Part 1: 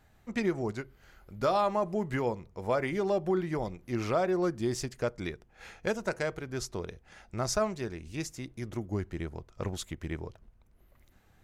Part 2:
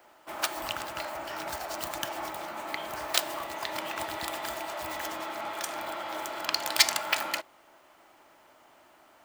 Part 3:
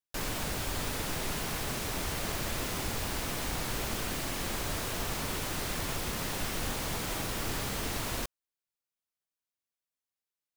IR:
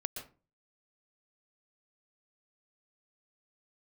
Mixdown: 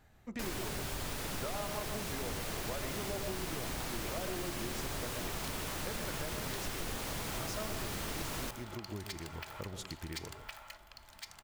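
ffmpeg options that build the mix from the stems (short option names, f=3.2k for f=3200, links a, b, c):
-filter_complex "[0:a]volume=-3.5dB,asplit=2[a][b];[b]volume=-7.5dB[c];[1:a]highpass=680,adelay=2300,volume=-10dB,asplit=3[d][e][f];[e]volume=-19dB[g];[f]volume=-8.5dB[h];[2:a]adelay=250,volume=-2.5dB,asplit=2[i][j];[j]volume=-5.5dB[k];[a][d]amix=inputs=2:normalize=0,acompressor=threshold=-42dB:ratio=6,volume=0dB[l];[3:a]atrim=start_sample=2205[m];[c][g][k]amix=inputs=3:normalize=0[n];[n][m]afir=irnorm=-1:irlink=0[o];[h]aecho=0:1:1063|2126|3189|4252|5315|6378:1|0.42|0.176|0.0741|0.0311|0.0131[p];[i][l][o][p]amix=inputs=4:normalize=0,acompressor=threshold=-40dB:ratio=2"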